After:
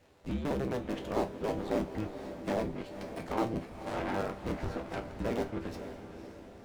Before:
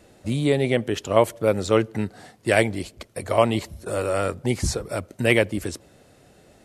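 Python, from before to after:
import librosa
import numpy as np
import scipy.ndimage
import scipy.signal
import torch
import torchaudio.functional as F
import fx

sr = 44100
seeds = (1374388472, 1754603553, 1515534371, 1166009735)

p1 = fx.cycle_switch(x, sr, every=2, mode='inverted')
p2 = fx.env_lowpass_down(p1, sr, base_hz=820.0, full_db=-16.0)
p3 = (np.mod(10.0 ** (15.0 / 20.0) * p2 + 1.0, 2.0) - 1.0) / 10.0 ** (15.0 / 20.0)
p4 = p2 + (p3 * 10.0 ** (-10.0 / 20.0))
p5 = fx.high_shelf(p4, sr, hz=11000.0, db=-7.5)
p6 = fx.resonator_bank(p5, sr, root=36, chord='major', decay_s=0.23)
p7 = p6 + fx.echo_diffused(p6, sr, ms=513, feedback_pct=53, wet_db=-10, dry=0)
p8 = fx.running_max(p7, sr, window=3)
y = p8 * 10.0 ** (-3.5 / 20.0)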